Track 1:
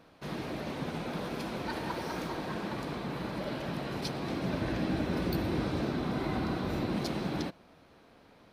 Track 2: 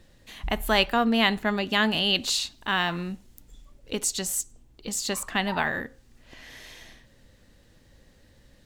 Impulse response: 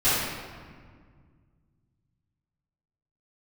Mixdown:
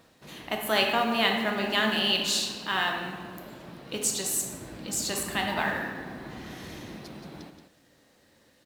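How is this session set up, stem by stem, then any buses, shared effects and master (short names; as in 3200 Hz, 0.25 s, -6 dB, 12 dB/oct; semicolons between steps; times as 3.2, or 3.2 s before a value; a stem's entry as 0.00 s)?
-0.5 dB, 0.00 s, no send, echo send -18.5 dB, auto duck -10 dB, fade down 0.30 s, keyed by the second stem
-5.0 dB, 0.00 s, send -16.5 dB, no echo send, HPF 230 Hz 12 dB/oct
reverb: on, RT60 1.8 s, pre-delay 3 ms
echo: echo 0.177 s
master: high shelf 6500 Hz +5 dB; modulation noise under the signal 29 dB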